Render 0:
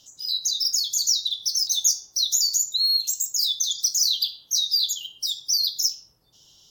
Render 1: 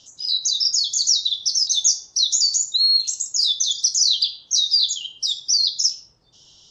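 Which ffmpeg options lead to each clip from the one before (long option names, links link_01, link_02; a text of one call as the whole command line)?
ffmpeg -i in.wav -af "lowpass=frequency=6900:width=0.5412,lowpass=frequency=6900:width=1.3066,volume=4.5dB" out.wav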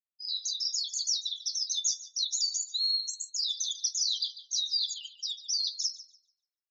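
ffmpeg -i in.wav -filter_complex "[0:a]afftfilt=real='re*gte(hypot(re,im),0.0794)':imag='im*gte(hypot(re,im),0.0794)':win_size=1024:overlap=0.75,flanger=delay=1.6:depth=6.9:regen=68:speed=0.83:shape=sinusoidal,asplit=2[link_01][link_02];[link_02]adelay=145,lowpass=frequency=2400:poles=1,volume=-9dB,asplit=2[link_03][link_04];[link_04]adelay=145,lowpass=frequency=2400:poles=1,volume=0.52,asplit=2[link_05][link_06];[link_06]adelay=145,lowpass=frequency=2400:poles=1,volume=0.52,asplit=2[link_07][link_08];[link_08]adelay=145,lowpass=frequency=2400:poles=1,volume=0.52,asplit=2[link_09][link_10];[link_10]adelay=145,lowpass=frequency=2400:poles=1,volume=0.52,asplit=2[link_11][link_12];[link_12]adelay=145,lowpass=frequency=2400:poles=1,volume=0.52[link_13];[link_01][link_03][link_05][link_07][link_09][link_11][link_13]amix=inputs=7:normalize=0,volume=-7.5dB" out.wav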